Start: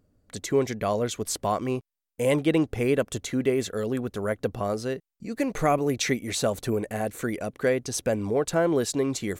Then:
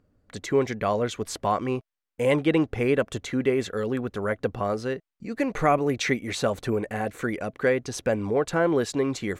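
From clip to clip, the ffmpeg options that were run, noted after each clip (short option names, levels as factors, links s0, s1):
-af "lowpass=f=3700:p=1,equalizer=f=1600:w=0.57:g=4.5,bandreject=f=650:w=18"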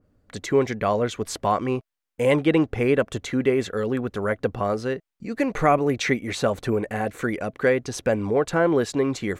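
-af "adynamicequalizer=threshold=0.0112:dfrequency=2700:dqfactor=0.7:tfrequency=2700:tqfactor=0.7:attack=5:release=100:ratio=0.375:range=1.5:mode=cutabove:tftype=highshelf,volume=1.33"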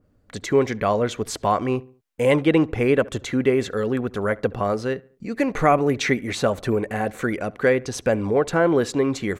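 -filter_complex "[0:a]asplit=2[s0][s1];[s1]adelay=70,lowpass=f=2100:p=1,volume=0.0794,asplit=2[s2][s3];[s3]adelay=70,lowpass=f=2100:p=1,volume=0.46,asplit=2[s4][s5];[s5]adelay=70,lowpass=f=2100:p=1,volume=0.46[s6];[s0][s2][s4][s6]amix=inputs=4:normalize=0,volume=1.19"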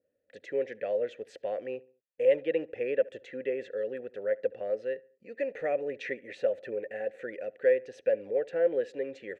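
-filter_complex "[0:a]asplit=3[s0][s1][s2];[s0]bandpass=f=530:t=q:w=8,volume=1[s3];[s1]bandpass=f=1840:t=q:w=8,volume=0.501[s4];[s2]bandpass=f=2480:t=q:w=8,volume=0.355[s5];[s3][s4][s5]amix=inputs=3:normalize=0,volume=0.794"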